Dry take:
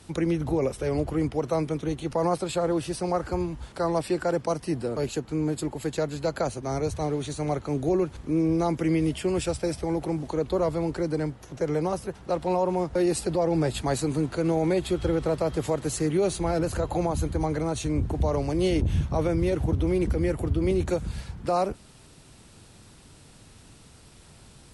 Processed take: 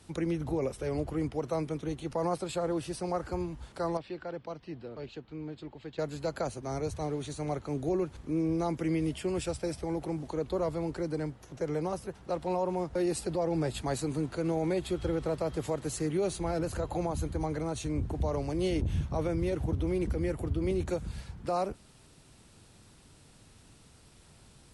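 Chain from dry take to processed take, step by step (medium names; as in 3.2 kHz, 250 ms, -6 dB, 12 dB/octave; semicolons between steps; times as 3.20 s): 3.97–5.99 s: four-pole ladder low-pass 4.4 kHz, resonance 35%; trim -6 dB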